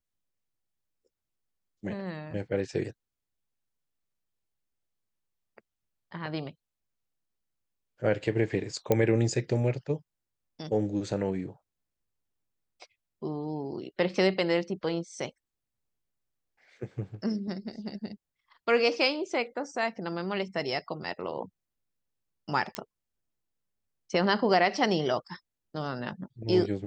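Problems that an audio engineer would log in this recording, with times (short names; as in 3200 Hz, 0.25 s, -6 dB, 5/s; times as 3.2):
8.92 pop -11 dBFS
22.75 pop -15 dBFS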